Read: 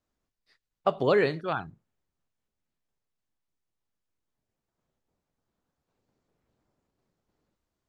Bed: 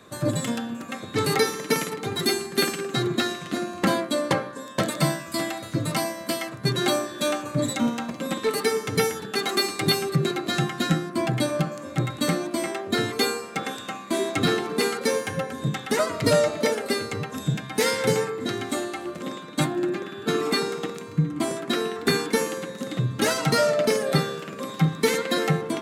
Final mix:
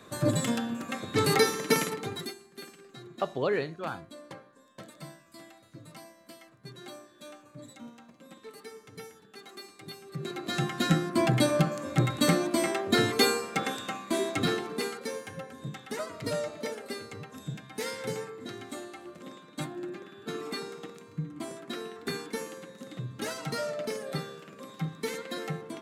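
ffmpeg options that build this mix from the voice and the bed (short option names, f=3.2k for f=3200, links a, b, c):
-filter_complex "[0:a]adelay=2350,volume=-5.5dB[a];[1:a]volume=21dB,afade=t=out:st=1.85:d=0.49:silence=0.0891251,afade=t=in:st=10.05:d=1.11:silence=0.0749894,afade=t=out:st=13.39:d=1.69:silence=0.237137[b];[a][b]amix=inputs=2:normalize=0"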